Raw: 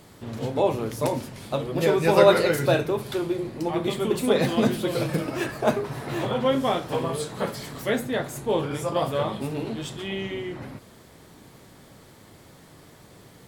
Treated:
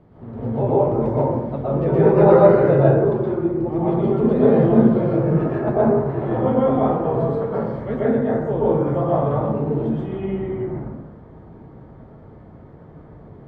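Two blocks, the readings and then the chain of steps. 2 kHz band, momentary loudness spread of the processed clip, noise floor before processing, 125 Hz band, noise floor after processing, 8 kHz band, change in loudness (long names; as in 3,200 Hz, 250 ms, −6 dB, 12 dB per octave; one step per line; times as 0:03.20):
−4.5 dB, 12 LU, −51 dBFS, +10.0 dB, −44 dBFS, below −30 dB, +6.5 dB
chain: Bessel low-pass filter 850 Hz, order 2
low-shelf EQ 250 Hz +4.5 dB
dense smooth reverb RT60 1.1 s, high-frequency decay 0.3×, pre-delay 105 ms, DRR −7.5 dB
level −2.5 dB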